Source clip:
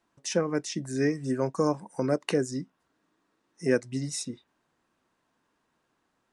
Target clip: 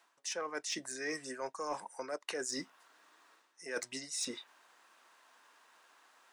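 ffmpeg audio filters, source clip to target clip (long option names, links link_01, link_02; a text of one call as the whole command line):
ffmpeg -i in.wav -af "highpass=810,areverse,acompressor=threshold=-49dB:ratio=10,areverse,asoftclip=type=tanh:threshold=-39dB,volume=13.5dB" out.wav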